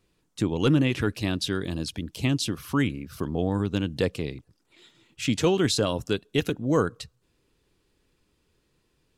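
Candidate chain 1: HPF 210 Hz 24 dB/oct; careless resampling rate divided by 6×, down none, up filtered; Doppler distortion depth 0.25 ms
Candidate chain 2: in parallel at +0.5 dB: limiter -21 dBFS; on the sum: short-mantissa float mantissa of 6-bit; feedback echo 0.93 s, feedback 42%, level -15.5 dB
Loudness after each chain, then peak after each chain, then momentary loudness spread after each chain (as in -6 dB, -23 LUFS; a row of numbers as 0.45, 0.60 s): -28.0, -23.0 LUFS; -11.0, -9.0 dBFS; 11, 18 LU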